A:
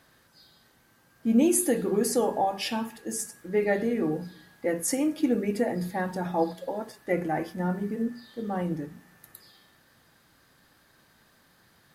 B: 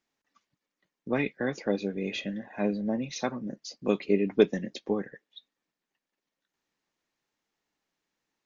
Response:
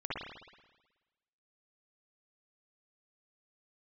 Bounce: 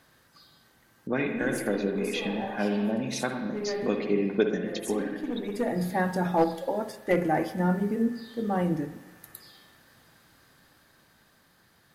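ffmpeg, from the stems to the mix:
-filter_complex "[0:a]dynaudnorm=f=140:g=21:m=1.5,aeval=exprs='clip(val(0),-1,0.15)':c=same,volume=0.891,asplit=2[s0][s1];[s1]volume=0.133[s2];[1:a]equalizer=f=1500:w=6.3:g=8,acompressor=threshold=0.0158:ratio=1.5,volume=1.19,asplit=3[s3][s4][s5];[s4]volume=0.501[s6];[s5]apad=whole_len=526686[s7];[s0][s7]sidechaincompress=threshold=0.00282:ratio=8:attack=5.2:release=489[s8];[2:a]atrim=start_sample=2205[s9];[s2][s6]amix=inputs=2:normalize=0[s10];[s10][s9]afir=irnorm=-1:irlink=0[s11];[s8][s3][s11]amix=inputs=3:normalize=0"

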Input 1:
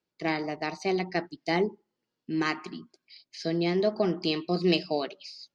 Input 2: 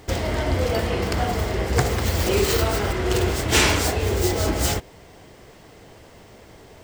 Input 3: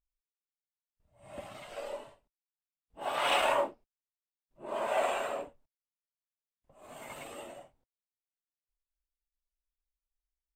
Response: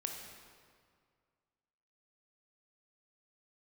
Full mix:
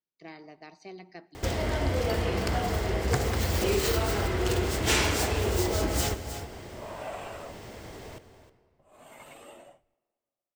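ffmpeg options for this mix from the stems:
-filter_complex "[0:a]volume=0.158,asplit=2[s0][s1];[s1]volume=0.15[s2];[1:a]adelay=1350,volume=1.26,asplit=3[s3][s4][s5];[s4]volume=0.501[s6];[s5]volume=0.224[s7];[2:a]adelay=2100,volume=0.631,asplit=2[s8][s9];[s9]volume=0.0841[s10];[3:a]atrim=start_sample=2205[s11];[s2][s6][s10]amix=inputs=3:normalize=0[s12];[s12][s11]afir=irnorm=-1:irlink=0[s13];[s7]aecho=0:1:313:1[s14];[s0][s3][s8][s13][s14]amix=inputs=5:normalize=0,acompressor=threshold=0.00708:ratio=1.5"

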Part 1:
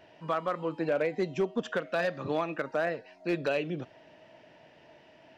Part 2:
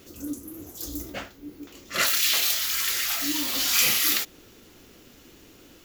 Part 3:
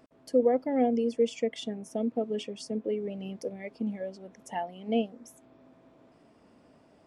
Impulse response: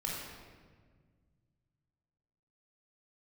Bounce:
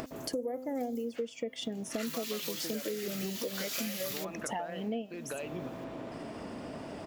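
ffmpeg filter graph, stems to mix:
-filter_complex "[0:a]acompressor=threshold=0.0178:ratio=6,adelay=1850,volume=0.891[s0];[1:a]highpass=950,volume=0.299[s1];[2:a]bandreject=f=258.1:t=h:w=4,bandreject=f=516.2:t=h:w=4,bandreject=f=774.3:t=h:w=4,bandreject=f=1032.4:t=h:w=4,bandreject=f=1290.5:t=h:w=4,bandreject=f=1548.6:t=h:w=4,bandreject=f=1806.7:t=h:w=4,bandreject=f=2064.8:t=h:w=4,bandreject=f=2322.9:t=h:w=4,bandreject=f=2581:t=h:w=4,bandreject=f=2839.1:t=h:w=4,bandreject=f=3097.2:t=h:w=4,bandreject=f=3355.3:t=h:w=4,bandreject=f=3613.4:t=h:w=4,bandreject=f=3871.5:t=h:w=4,bandreject=f=4129.6:t=h:w=4,acompressor=mode=upward:threshold=0.0316:ratio=2.5,volume=1.33[s2];[s0][s1][s2]amix=inputs=3:normalize=0,acompressor=threshold=0.0251:ratio=10"

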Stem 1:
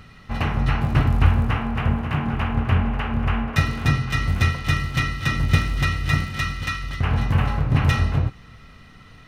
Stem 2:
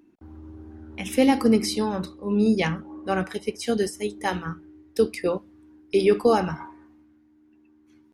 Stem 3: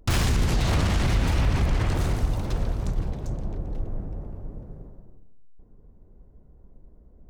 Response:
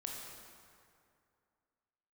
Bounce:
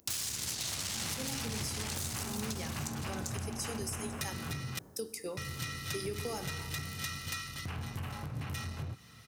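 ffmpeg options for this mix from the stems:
-filter_complex "[0:a]highshelf=f=8200:g=7.5,acompressor=threshold=0.0891:ratio=6,asoftclip=type=tanh:threshold=0.0944,adelay=650,volume=0.316,asplit=3[s0][s1][s2];[s0]atrim=end=4.79,asetpts=PTS-STARTPTS,afade=t=out:st=4.786:d=0.004:c=hsin[s3];[s1]atrim=start=4.79:end=5.37,asetpts=PTS-STARTPTS,volume=0[s4];[s2]atrim=start=5.37,asetpts=PTS-STARTPTS,afade=t=in:d=0.004:c=hsin[s5];[s3][s4][s5]concat=n=3:v=0:a=1[s6];[1:a]aexciter=amount=1.2:drive=9.4:freq=5500,volume=0.141,asplit=2[s7][s8];[s8]volume=0.335[s9];[2:a]tiltshelf=f=1300:g=-7.5,aeval=exprs='(tanh(12.6*val(0)+0.45)-tanh(0.45))/12.6':c=same,volume=1[s10];[s7][s10]amix=inputs=2:normalize=0,alimiter=level_in=1.58:limit=0.0631:level=0:latency=1:release=321,volume=0.631,volume=1[s11];[3:a]atrim=start_sample=2205[s12];[s9][s12]afir=irnorm=-1:irlink=0[s13];[s6][s11][s13]amix=inputs=3:normalize=0,highpass=f=78:w=0.5412,highpass=f=78:w=1.3066,bass=f=250:g=0,treble=f=4000:g=13,acompressor=threshold=0.0224:ratio=6"

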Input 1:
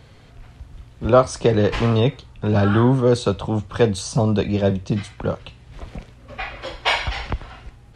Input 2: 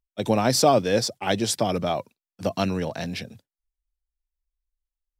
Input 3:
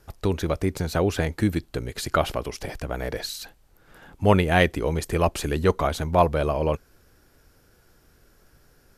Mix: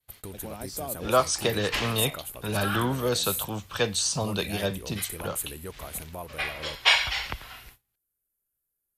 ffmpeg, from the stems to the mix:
-filter_complex "[0:a]agate=range=0.0224:threshold=0.00631:ratio=3:detection=peak,tiltshelf=f=1200:g=-9,volume=0.631[s0];[1:a]adelay=150,volume=0.112[s1];[2:a]acompressor=threshold=0.0316:ratio=2,aexciter=amount=12.2:drive=7.7:freq=7800,volume=0.251[s2];[s0][s1][s2]amix=inputs=3:normalize=0,agate=range=0.0501:threshold=0.00355:ratio=16:detection=peak"

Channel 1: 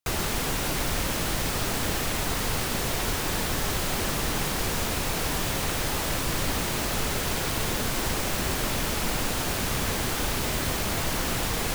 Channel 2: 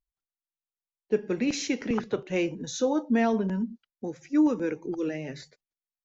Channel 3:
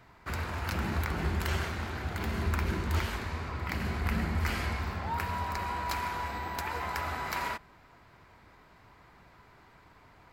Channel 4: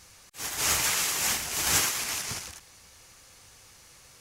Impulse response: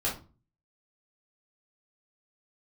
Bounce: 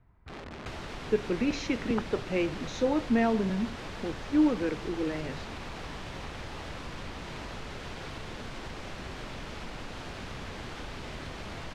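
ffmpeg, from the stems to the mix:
-filter_complex "[0:a]adelay=600,volume=0.447[s0];[1:a]volume=0.841[s1];[2:a]aemphasis=mode=reproduction:type=riaa,aeval=exprs='(mod(13.3*val(0)+1,2)-1)/13.3':c=same,volume=0.178[s2];[s0][s2]amix=inputs=2:normalize=0,acompressor=threshold=0.0178:ratio=6,volume=1[s3];[s1][s3]amix=inputs=2:normalize=0,lowpass=4000"

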